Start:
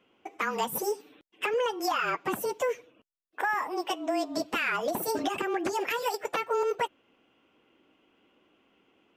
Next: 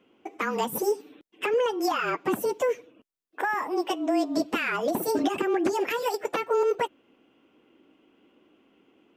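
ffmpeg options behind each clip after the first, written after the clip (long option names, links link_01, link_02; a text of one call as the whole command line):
ffmpeg -i in.wav -af "equalizer=frequency=290:width=0.89:gain=7.5" out.wav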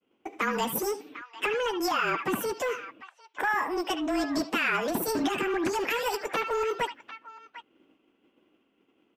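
ffmpeg -i in.wav -filter_complex "[0:a]agate=range=-33dB:threshold=-54dB:ratio=3:detection=peak,acrossover=split=250|1000|5000[link_01][link_02][link_03][link_04];[link_02]asoftclip=type=tanh:threshold=-32dB[link_05];[link_03]aecho=1:1:71|77|749:0.398|0.266|0.266[link_06];[link_01][link_05][link_06][link_04]amix=inputs=4:normalize=0,volume=1.5dB" out.wav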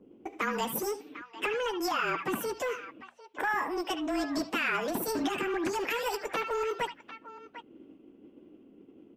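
ffmpeg -i in.wav -filter_complex "[0:a]bandreject=frequency=60:width_type=h:width=6,bandreject=frequency=120:width_type=h:width=6,bandreject=frequency=180:width_type=h:width=6,bandreject=frequency=240:width_type=h:width=6,acrossover=split=490[link_01][link_02];[link_01]acompressor=mode=upward:threshold=-34dB:ratio=2.5[link_03];[link_03][link_02]amix=inputs=2:normalize=0,volume=-3dB" out.wav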